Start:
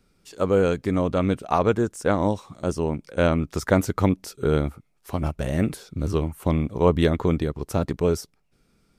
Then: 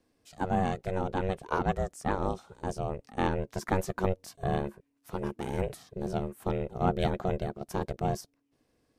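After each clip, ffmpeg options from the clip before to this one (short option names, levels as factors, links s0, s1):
-af "aeval=exprs='val(0)*sin(2*PI*280*n/s)':c=same,volume=0.531"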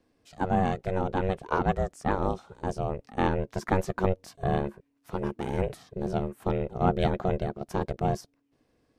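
-af "highshelf=f=6300:g=-9.5,volume=1.41"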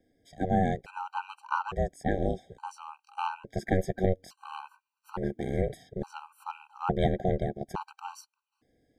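-af "afftfilt=real='re*gt(sin(2*PI*0.58*pts/sr)*(1-2*mod(floor(b*sr/1024/780),2)),0)':imag='im*gt(sin(2*PI*0.58*pts/sr)*(1-2*mod(floor(b*sr/1024/780),2)),0)':win_size=1024:overlap=0.75"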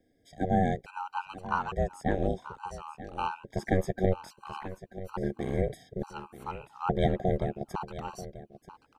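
-af "aecho=1:1:936:0.188"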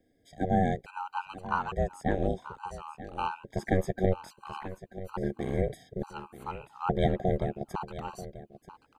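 -af "bandreject=f=5600:w=8.2"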